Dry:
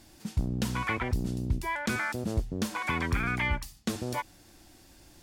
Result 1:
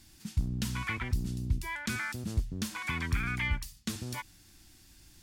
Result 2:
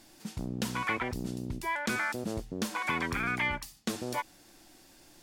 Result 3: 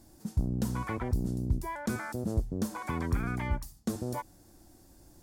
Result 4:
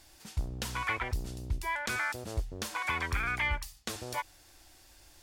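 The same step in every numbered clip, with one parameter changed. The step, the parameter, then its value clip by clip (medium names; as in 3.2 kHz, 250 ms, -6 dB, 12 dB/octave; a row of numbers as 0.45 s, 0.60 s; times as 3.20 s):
peaking EQ, frequency: 570 Hz, 62 Hz, 2.7 kHz, 200 Hz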